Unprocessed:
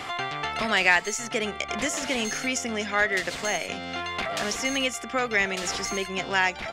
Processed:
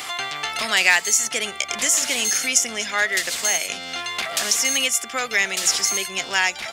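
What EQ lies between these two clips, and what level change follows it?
tilt +2.5 dB/oct; high shelf 5400 Hz +10.5 dB; 0.0 dB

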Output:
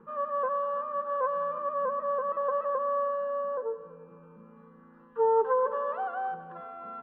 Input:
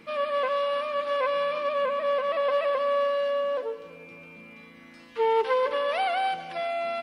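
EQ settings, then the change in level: LPF 1700 Hz 24 dB/oct; air absorption 51 m; fixed phaser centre 440 Hz, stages 8; 0.0 dB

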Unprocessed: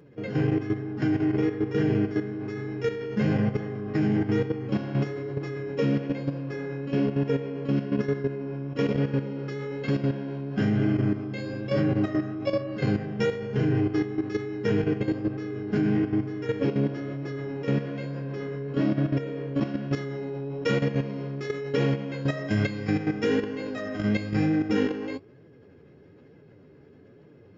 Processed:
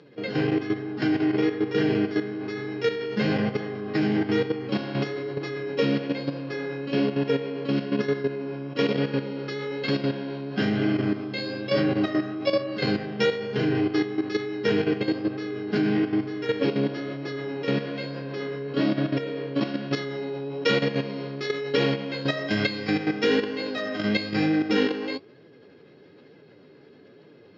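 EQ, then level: HPF 130 Hz; synth low-pass 4300 Hz, resonance Q 3.4; low shelf 180 Hz -9 dB; +4.0 dB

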